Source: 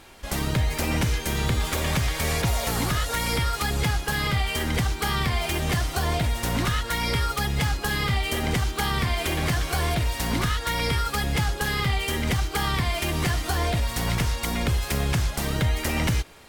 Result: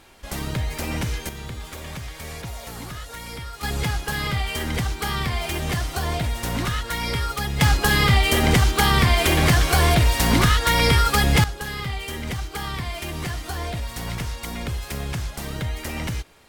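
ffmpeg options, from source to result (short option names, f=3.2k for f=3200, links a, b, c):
-af "asetnsamples=n=441:p=0,asendcmd='1.29 volume volume -10dB;3.63 volume volume -0.5dB;7.61 volume volume 7.5dB;11.44 volume volume -4.5dB',volume=-2.5dB"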